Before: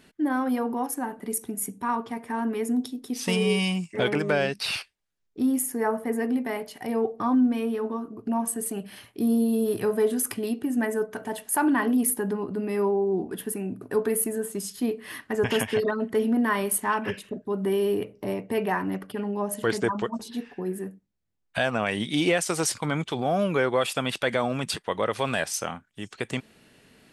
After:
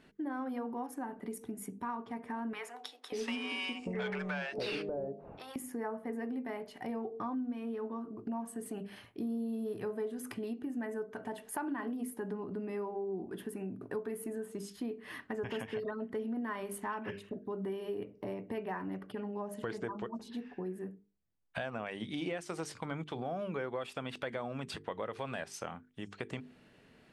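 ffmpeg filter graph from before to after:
-filter_complex "[0:a]asettb=1/sr,asplit=3[a][b][c];[a]atrim=end=2.534[d];[b]atrim=start=2.53:end=5.56,asetpts=PTS-STARTPTS,afade=t=in:d=0.004:c=qsin,afade=t=out:st=3.026:d=0.004:c=qsin,bandreject=f=52.94:t=h:w=4,bandreject=f=105.88:t=h:w=4,bandreject=f=158.82:t=h:w=4,bandreject=f=211.76:t=h:w=4,bandreject=f=264.7:t=h:w=4,bandreject=f=317.64:t=h:w=4,bandreject=f=370.58:t=h:w=4,bandreject=f=423.52:t=h:w=4,bandreject=f=476.46:t=h:w=4,bandreject=f=529.4:t=h:w=4,bandreject=f=582.34:t=h:w=4,bandreject=f=635.28:t=h:w=4,bandreject=f=688.22:t=h:w=4,bandreject=f=741.16:t=h:w=4,bandreject=f=794.1:t=h:w=4,bandreject=f=847.04:t=h:w=4,bandreject=f=899.98:t=h:w=4,asplit=2[e][f];[f]highpass=f=720:p=1,volume=17dB,asoftclip=type=tanh:threshold=-9.5dB[g];[e][g]amix=inputs=2:normalize=0,lowpass=f=3.5k:p=1,volume=-6dB,acrossover=split=650[h][i];[h]adelay=590[j];[j][i]amix=inputs=2:normalize=0,atrim=end_sample=133623[k];[c]atrim=start=5.556[l];[d][k]acrossfade=d=0.004:c1=hsin:c2=qsin[m];[m][l]acrossfade=d=0.004:c1=qsin:c2=hsin,lowpass=f=2.2k:p=1,bandreject=f=50:t=h:w=6,bandreject=f=100:t=h:w=6,bandreject=f=150:t=h:w=6,bandreject=f=200:t=h:w=6,bandreject=f=250:t=h:w=6,bandreject=f=300:t=h:w=6,bandreject=f=350:t=h:w=6,bandreject=f=400:t=h:w=6,bandreject=f=450:t=h:w=6,acompressor=threshold=-34dB:ratio=3,volume=-3.5dB"

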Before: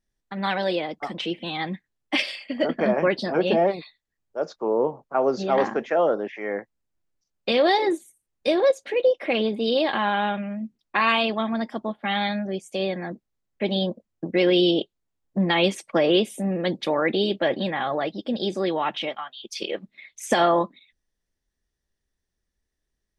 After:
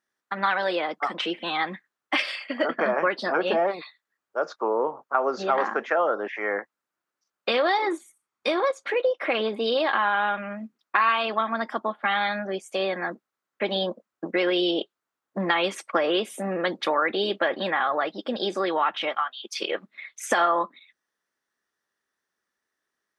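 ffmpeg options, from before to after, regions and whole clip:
-filter_complex "[0:a]asettb=1/sr,asplit=3[a][b][c];[a]atrim=end=7.734[d];[b]atrim=start=7.73:end=8.89,asetpts=PTS-STARTPTS,afade=t=in:d=0.004:c=qsin,afade=t=out:st=1.156:d=0.004:c=qsin,lowpass=9.9k,aecho=1:1:0.9:0.31,atrim=end_sample=51156[e];[c]atrim=start=8.886[f];[d][e]acrossfade=d=0.004:c1=hsin:c2=qsin[g];[g][f]acrossfade=d=0.004:c1=qsin:c2=hsin,highpass=280,equalizer=f=1.3k:t=o:w=1.1:g=13,acompressor=threshold=-22dB:ratio=2.5"

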